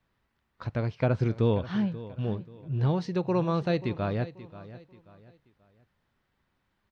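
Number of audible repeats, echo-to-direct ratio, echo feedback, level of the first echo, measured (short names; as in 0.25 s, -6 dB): 3, -15.5 dB, 34%, -16.0 dB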